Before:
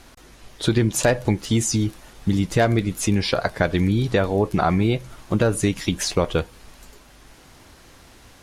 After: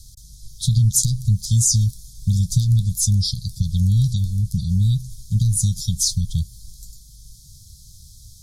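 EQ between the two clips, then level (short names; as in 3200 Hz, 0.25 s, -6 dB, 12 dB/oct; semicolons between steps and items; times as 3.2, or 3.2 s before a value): inverse Chebyshev band-stop 330–2100 Hz, stop band 50 dB; brick-wall FIR band-stop 360–3100 Hz; +7.5 dB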